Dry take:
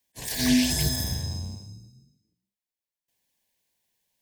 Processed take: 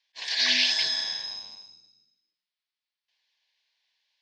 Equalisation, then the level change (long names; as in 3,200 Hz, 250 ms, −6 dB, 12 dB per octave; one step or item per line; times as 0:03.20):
high-pass filter 1,100 Hz 12 dB per octave
Butterworth low-pass 4,800 Hz 36 dB per octave
high-shelf EQ 2,600 Hz +8 dB
+3.5 dB